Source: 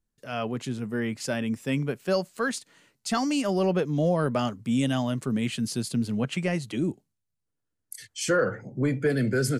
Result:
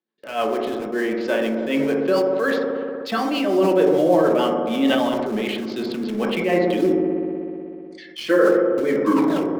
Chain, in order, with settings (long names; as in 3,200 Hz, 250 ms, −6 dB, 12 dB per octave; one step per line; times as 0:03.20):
turntable brake at the end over 0.73 s
elliptic band-pass filter 280–3,900 Hz, stop band 50 dB
notch filter 1,400 Hz, Q 16
in parallel at −8.5 dB: bit reduction 6 bits
on the sum: rotating-speaker cabinet horn 6.7 Hz
delay with a low-pass on its return 62 ms, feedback 84%, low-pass 810 Hz, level −5.5 dB
on a send at −3 dB: convolution reverb RT60 0.45 s, pre-delay 3 ms
on the sum: level that may fall only so fast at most 21 dB per second
level +5 dB